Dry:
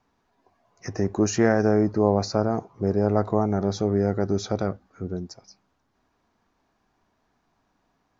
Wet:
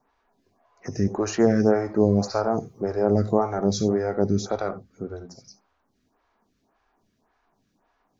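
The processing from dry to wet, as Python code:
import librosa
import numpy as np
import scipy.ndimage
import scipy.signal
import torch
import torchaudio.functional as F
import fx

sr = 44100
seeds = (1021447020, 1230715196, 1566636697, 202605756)

y = fx.high_shelf(x, sr, hz=6400.0, db=11.0, at=(1.65, 4.03))
y = fx.rev_gated(y, sr, seeds[0], gate_ms=110, shape='flat', drr_db=9.0)
y = fx.stagger_phaser(y, sr, hz=1.8)
y = y * librosa.db_to_amplitude(3.0)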